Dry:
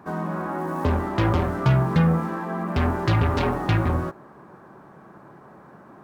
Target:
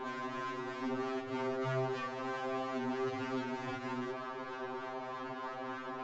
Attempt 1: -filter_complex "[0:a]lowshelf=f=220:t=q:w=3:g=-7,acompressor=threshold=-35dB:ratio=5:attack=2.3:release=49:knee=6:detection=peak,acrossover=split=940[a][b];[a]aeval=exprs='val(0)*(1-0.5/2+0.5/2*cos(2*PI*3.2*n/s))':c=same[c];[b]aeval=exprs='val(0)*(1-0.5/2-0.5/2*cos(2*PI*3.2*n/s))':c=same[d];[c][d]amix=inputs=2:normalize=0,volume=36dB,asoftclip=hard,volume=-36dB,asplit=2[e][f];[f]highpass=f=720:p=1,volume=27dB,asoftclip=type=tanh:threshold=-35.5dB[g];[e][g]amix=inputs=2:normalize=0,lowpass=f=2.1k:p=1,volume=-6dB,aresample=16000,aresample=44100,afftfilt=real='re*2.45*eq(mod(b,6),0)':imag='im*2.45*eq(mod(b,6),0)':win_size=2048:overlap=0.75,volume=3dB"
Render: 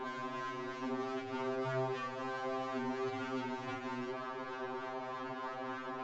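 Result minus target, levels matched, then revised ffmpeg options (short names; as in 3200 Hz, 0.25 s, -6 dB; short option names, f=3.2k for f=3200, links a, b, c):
compressor: peak gain reduction +6.5 dB
-filter_complex "[0:a]lowshelf=f=220:t=q:w=3:g=-7,acompressor=threshold=-27dB:ratio=5:attack=2.3:release=49:knee=6:detection=peak,acrossover=split=940[a][b];[a]aeval=exprs='val(0)*(1-0.5/2+0.5/2*cos(2*PI*3.2*n/s))':c=same[c];[b]aeval=exprs='val(0)*(1-0.5/2-0.5/2*cos(2*PI*3.2*n/s))':c=same[d];[c][d]amix=inputs=2:normalize=0,volume=36dB,asoftclip=hard,volume=-36dB,asplit=2[e][f];[f]highpass=f=720:p=1,volume=27dB,asoftclip=type=tanh:threshold=-35.5dB[g];[e][g]amix=inputs=2:normalize=0,lowpass=f=2.1k:p=1,volume=-6dB,aresample=16000,aresample=44100,afftfilt=real='re*2.45*eq(mod(b,6),0)':imag='im*2.45*eq(mod(b,6),0)':win_size=2048:overlap=0.75,volume=3dB"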